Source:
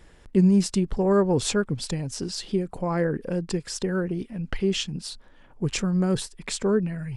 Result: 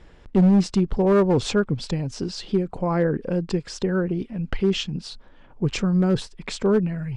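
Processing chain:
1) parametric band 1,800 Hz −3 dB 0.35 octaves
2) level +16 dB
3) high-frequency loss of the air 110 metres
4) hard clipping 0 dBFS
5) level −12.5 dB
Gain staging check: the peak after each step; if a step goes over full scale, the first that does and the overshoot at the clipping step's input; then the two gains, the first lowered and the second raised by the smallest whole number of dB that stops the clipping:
−9.0, +7.0, +7.0, 0.0, −12.5 dBFS
step 2, 7.0 dB
step 2 +9 dB, step 5 −5.5 dB

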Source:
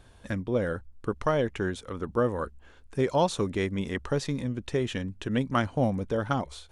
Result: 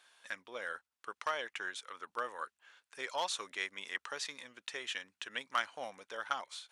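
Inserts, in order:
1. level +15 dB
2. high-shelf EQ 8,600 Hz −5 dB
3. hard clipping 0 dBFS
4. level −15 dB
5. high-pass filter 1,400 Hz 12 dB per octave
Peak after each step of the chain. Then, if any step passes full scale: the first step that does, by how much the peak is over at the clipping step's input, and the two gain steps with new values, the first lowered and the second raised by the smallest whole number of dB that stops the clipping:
+3.5, +3.5, 0.0, −15.0, −18.5 dBFS
step 1, 3.5 dB
step 1 +11 dB, step 4 −11 dB

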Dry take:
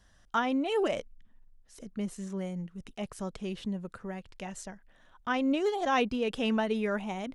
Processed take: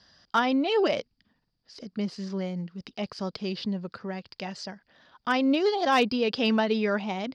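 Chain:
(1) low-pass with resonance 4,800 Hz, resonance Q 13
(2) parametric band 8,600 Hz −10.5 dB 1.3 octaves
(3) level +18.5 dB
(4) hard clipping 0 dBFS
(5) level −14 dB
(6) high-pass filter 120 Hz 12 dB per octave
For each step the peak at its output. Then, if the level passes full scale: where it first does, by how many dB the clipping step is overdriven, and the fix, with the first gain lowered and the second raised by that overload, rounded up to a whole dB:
−13.5, −15.0, +3.5, 0.0, −14.0, −12.0 dBFS
step 3, 3.5 dB
step 3 +14.5 dB, step 5 −10 dB

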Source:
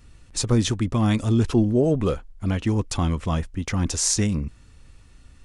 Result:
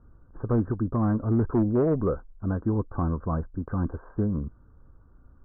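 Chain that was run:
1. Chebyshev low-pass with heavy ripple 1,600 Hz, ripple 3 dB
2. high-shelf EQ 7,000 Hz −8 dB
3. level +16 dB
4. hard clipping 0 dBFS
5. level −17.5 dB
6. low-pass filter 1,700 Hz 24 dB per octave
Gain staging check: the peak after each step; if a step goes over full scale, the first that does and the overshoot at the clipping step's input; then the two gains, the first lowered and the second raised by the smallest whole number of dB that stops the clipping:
−11.0, −11.0, +5.0, 0.0, −17.5, −17.0 dBFS
step 3, 5.0 dB
step 3 +11 dB, step 5 −12.5 dB

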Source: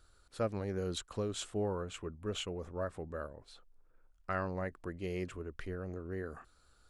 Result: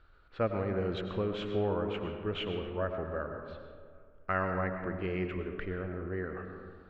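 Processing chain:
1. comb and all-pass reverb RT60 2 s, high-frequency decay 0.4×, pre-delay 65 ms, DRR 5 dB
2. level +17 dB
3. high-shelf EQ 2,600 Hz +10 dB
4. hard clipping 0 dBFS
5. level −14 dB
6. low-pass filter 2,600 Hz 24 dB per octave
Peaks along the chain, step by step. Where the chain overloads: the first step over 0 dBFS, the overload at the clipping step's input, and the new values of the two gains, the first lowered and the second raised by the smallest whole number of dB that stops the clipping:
−22.0, −5.0, −2.5, −2.5, −16.5, −17.0 dBFS
no step passes full scale

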